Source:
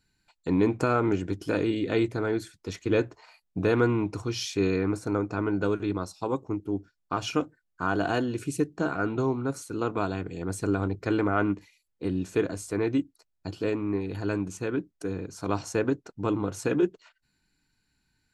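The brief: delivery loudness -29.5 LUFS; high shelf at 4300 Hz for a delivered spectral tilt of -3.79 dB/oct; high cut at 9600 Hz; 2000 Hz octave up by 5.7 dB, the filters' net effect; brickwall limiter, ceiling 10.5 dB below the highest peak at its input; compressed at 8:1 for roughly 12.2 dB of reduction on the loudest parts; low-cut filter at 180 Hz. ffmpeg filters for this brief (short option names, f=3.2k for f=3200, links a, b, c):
-af "highpass=180,lowpass=9.6k,equalizer=f=2k:t=o:g=7,highshelf=f=4.3k:g=7.5,acompressor=threshold=-31dB:ratio=8,volume=9dB,alimiter=limit=-17.5dB:level=0:latency=1"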